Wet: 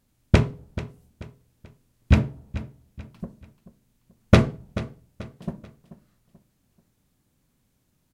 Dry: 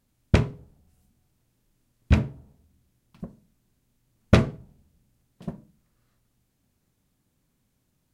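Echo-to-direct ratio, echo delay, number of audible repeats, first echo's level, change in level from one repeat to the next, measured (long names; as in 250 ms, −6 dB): −14.5 dB, 435 ms, 3, −15.0 dB, −8.5 dB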